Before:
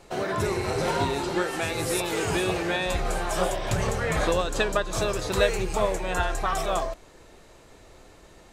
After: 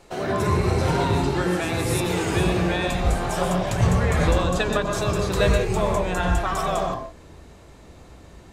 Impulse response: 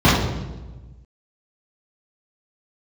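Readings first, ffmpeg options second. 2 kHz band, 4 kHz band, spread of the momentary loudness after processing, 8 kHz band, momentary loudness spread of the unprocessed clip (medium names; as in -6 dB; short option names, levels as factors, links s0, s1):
+1.5 dB, +1.0 dB, 4 LU, 0.0 dB, 4 LU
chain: -filter_complex "[0:a]asplit=2[s0][s1];[1:a]atrim=start_sample=2205,atrim=end_sample=4410,adelay=88[s2];[s1][s2]afir=irnorm=-1:irlink=0,volume=0.0447[s3];[s0][s3]amix=inputs=2:normalize=0"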